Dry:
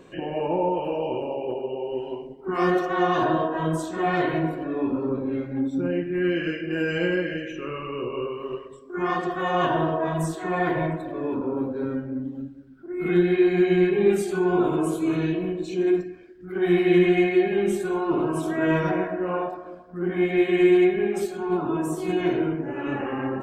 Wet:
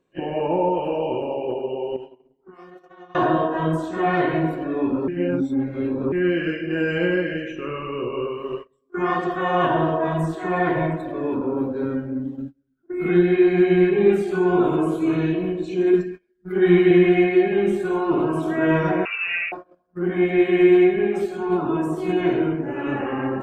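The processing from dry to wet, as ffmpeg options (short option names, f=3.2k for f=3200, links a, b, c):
-filter_complex "[0:a]asettb=1/sr,asplit=3[a][b][c];[a]atrim=end=1.964[d];[b]atrim=start=1.96:end=3.15,asetpts=PTS-STARTPTS,afade=t=in:d=0.004:c=qsin,afade=t=out:st=1.186:d=0.004:c=qsin,acompressor=threshold=-34dB:ratio=12:attack=3.2:release=140:knee=1:detection=peak[e];[c]atrim=start=3.146[f];[d][e]acrossfade=d=0.004:c1=hsin:c2=qsin[g];[g][f]acrossfade=d=0.004:c1=qsin:c2=hsin,asettb=1/sr,asplit=3[h][i][j];[h]atrim=end=15.934[k];[i]atrim=start=15.93:end=16.91,asetpts=PTS-STARTPTS,afade=t=in:d=0.004:c=qsin,afade=t=out:st=0.976:d=0.004:c=qsin,aecho=1:1:4.9:0.75,atrim=end_sample=43218[l];[j]atrim=start=16.906[m];[k][l]acrossfade=d=0.004:c1=hsin:c2=qsin[n];[n][m]acrossfade=d=0.004:c1=qsin:c2=hsin,asettb=1/sr,asplit=3[o][p][q];[o]atrim=end=19.054[r];[p]atrim=start=19.05:end=19.52,asetpts=PTS-STARTPTS,afade=t=in:d=0.004:c=qsin,afade=t=out:st=0.466:d=0.004:c=qsin,lowpass=f=2.6k:t=q:w=0.5098,lowpass=f=2.6k:t=q:w=0.6013,lowpass=f=2.6k:t=q:w=0.9,lowpass=f=2.6k:t=q:w=2.563,afreqshift=-3000[s];[q]atrim=start=19.516[t];[r][s]acrossfade=d=0.004:c1=hsin:c2=qsin[u];[u][t]acrossfade=d=0.004:c1=qsin:c2=hsin,asplit=3[v][w][x];[v]atrim=end=5.082[y];[w]atrim=start=5.078:end=6.122,asetpts=PTS-STARTPTS,areverse[z];[x]atrim=start=6.118[aa];[y][z]acrossfade=d=0.004:c1=hsin:c2=hsin[ab];[ab][aa]acrossfade=d=0.004:c1=hsin:c2=hsin,acrossover=split=3200[ac][ad];[ad]acompressor=threshold=-54dB:ratio=4:attack=1:release=60[ae];[ac][ae]amix=inputs=2:normalize=0,agate=range=-25dB:threshold=-35dB:ratio=16:detection=peak,volume=3dB"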